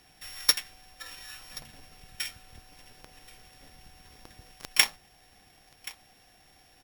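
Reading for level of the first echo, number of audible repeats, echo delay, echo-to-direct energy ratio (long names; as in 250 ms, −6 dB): −20.0 dB, 1, 1,078 ms, −20.0 dB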